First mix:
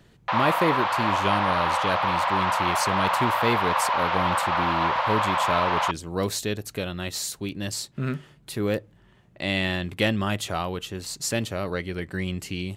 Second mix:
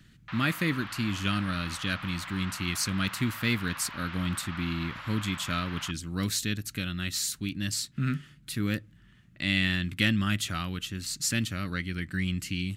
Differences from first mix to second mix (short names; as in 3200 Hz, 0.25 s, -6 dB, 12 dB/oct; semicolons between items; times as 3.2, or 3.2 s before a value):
background -11.5 dB; master: add band shelf 620 Hz -16 dB